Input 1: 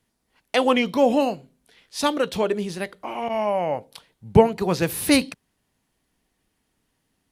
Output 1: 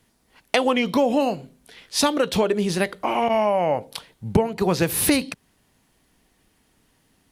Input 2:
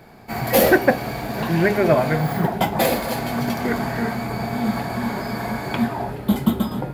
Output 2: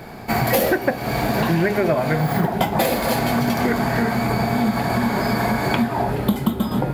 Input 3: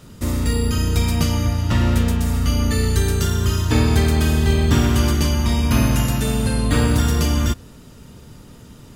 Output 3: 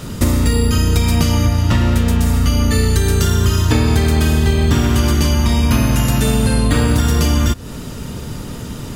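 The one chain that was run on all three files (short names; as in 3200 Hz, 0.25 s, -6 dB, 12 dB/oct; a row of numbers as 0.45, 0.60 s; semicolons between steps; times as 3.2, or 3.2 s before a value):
compressor 6:1, threshold -26 dBFS; normalise peaks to -1.5 dBFS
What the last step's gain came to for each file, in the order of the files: +9.0, +9.5, +14.5 dB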